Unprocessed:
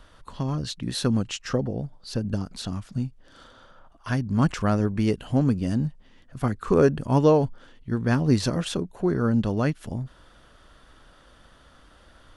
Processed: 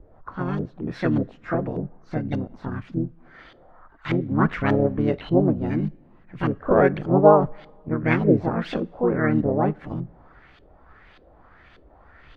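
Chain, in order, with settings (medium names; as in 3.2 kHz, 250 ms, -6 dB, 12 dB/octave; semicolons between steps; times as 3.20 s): harmony voices +5 st 0 dB; LFO low-pass saw up 1.7 Hz 410–3400 Hz; two-slope reverb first 0.29 s, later 1.9 s, from -18 dB, DRR 17 dB; trim -2.5 dB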